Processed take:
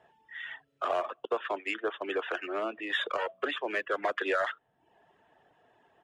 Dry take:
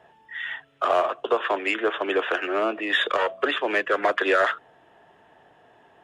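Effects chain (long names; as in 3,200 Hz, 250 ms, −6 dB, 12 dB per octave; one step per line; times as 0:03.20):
downsampling to 22,050 Hz
0:01.25–0:02.02: downward expander −24 dBFS
reverb reduction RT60 0.6 s
level −8 dB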